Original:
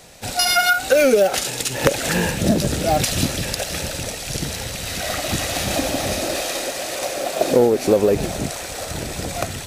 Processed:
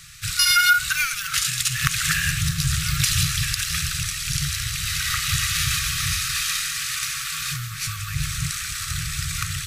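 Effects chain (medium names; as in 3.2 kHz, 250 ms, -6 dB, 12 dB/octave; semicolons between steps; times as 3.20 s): in parallel at -1 dB: peak limiter -12 dBFS, peak gain reduction 9 dB; on the sum: FFT band-reject 170–1100 Hz; trim -3 dB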